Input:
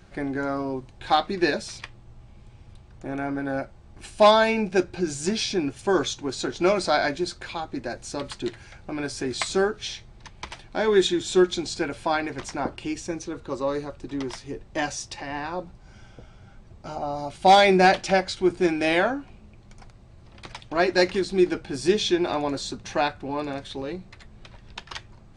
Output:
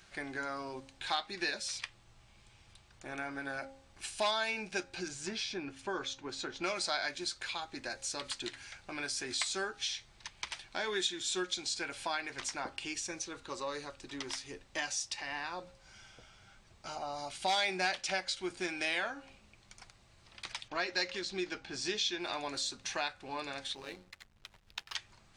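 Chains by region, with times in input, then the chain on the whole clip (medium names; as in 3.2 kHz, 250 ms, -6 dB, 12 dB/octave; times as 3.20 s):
5.08–6.64 s: low-pass 1.5 kHz 6 dB/octave + band-stop 710 Hz, Q 16
20.68–22.20 s: low-pass 7.2 kHz 24 dB/octave + tape noise reduction on one side only decoder only
23.75–24.95 s: hum notches 60/120/180/240/300/360/420/480/540 Hz + hysteresis with a dead band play -45.5 dBFS + AM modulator 100 Hz, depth 40%
whole clip: tilt shelf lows -9.5 dB, about 920 Hz; de-hum 269.6 Hz, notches 3; compression 2:1, threshold -30 dBFS; trim -6.5 dB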